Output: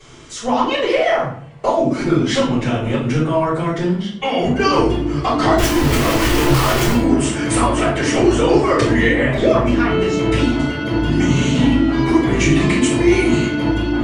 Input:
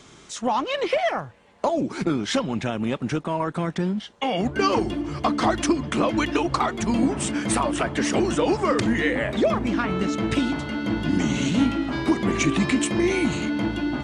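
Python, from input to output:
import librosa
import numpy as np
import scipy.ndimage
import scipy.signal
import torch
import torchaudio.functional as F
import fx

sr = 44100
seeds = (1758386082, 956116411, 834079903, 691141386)

y = fx.clip_1bit(x, sr, at=(5.58, 6.93))
y = fx.room_shoebox(y, sr, seeds[0], volume_m3=70.0, walls='mixed', distance_m=3.6)
y = y * librosa.db_to_amplitude(-7.5)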